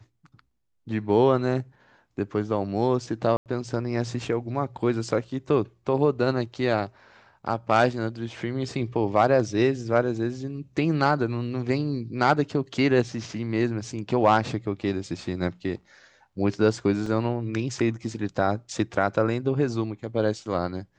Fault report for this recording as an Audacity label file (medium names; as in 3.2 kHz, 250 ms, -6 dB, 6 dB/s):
3.370000	3.460000	dropout 88 ms
17.060000	17.060000	dropout 3.4 ms